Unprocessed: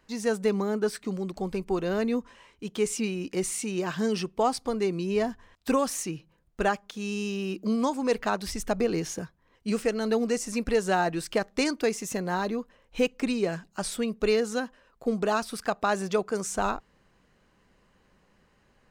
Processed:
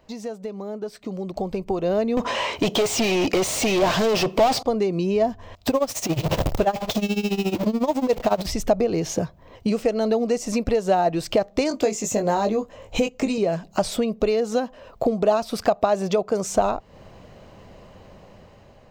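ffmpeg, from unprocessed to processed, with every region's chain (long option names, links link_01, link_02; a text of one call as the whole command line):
ffmpeg -i in.wav -filter_complex "[0:a]asettb=1/sr,asplit=3[link_01][link_02][link_03];[link_01]atrim=end=2.174[link_04];[link_02]atrim=start=2.17:end=4.63,asetpts=PTS-STARTPTS,afade=type=in:duration=0.004:curve=qsin,afade=type=out:start_time=2.456:duration=0.004:curve=qsin,asplit=2[link_05][link_06];[link_06]highpass=frequency=720:poles=1,volume=34dB,asoftclip=type=tanh:threshold=-13.5dB[link_07];[link_05][link_07]amix=inputs=2:normalize=0,lowpass=frequency=6800:poles=1,volume=-6dB,aeval=exprs='clip(val(0),-1,0.0891)':channel_layout=same[link_08];[link_03]atrim=start=4.626[link_09];[link_04][link_08]acrossfade=duration=0.004:curve1=hsin:curve2=qsin[link_10];[link_10][link_09]acrossfade=duration=0.004:curve1=qsin:curve2=hsin,asettb=1/sr,asplit=3[link_11][link_12][link_13];[link_11]atrim=end=5.694[link_14];[link_12]atrim=start=5.69:end=8.46,asetpts=PTS-STARTPTS,afade=type=in:duration=0.004:curve=qsin,afade=type=out:start_time=2.766:duration=0.004:curve=qsin,aeval=exprs='val(0)+0.5*0.0398*sgn(val(0))':channel_layout=same,tremolo=f=14:d=0.87[link_15];[link_13]atrim=start=8.456[link_16];[link_14][link_15]acrossfade=duration=0.004:curve1=hsin:curve2=qsin[link_17];[link_17][link_16]acrossfade=duration=0.004:curve1=qsin:curve2=hsin,asettb=1/sr,asplit=3[link_18][link_19][link_20];[link_18]atrim=end=11.694[link_21];[link_19]atrim=start=11.69:end=13.38,asetpts=PTS-STARTPTS,afade=type=in:duration=0.004:curve=qsin,afade=type=out:start_time=1.686:duration=0.004:curve=qsin,equalizer=frequency=7100:width=4:gain=11.5,asplit=2[link_22][link_23];[link_23]adelay=19,volume=-6dB[link_24];[link_22][link_24]amix=inputs=2:normalize=0,atrim=end_sample=74529[link_25];[link_20]atrim=start=13.376[link_26];[link_21][link_25]acrossfade=duration=0.004:curve1=hsin:curve2=qsin[link_27];[link_27][link_26]acrossfade=duration=0.004:curve1=qsin:curve2=hsin,acompressor=threshold=-39dB:ratio=6,equalizer=frequency=100:width_type=o:width=0.67:gain=9,equalizer=frequency=630:width_type=o:width=0.67:gain=10,equalizer=frequency=1600:width_type=o:width=0.67:gain=-7,equalizer=frequency=10000:width_type=o:width=0.67:gain=-11,dynaudnorm=framelen=630:gausssize=5:maxgain=11dB,volume=5.5dB" out.wav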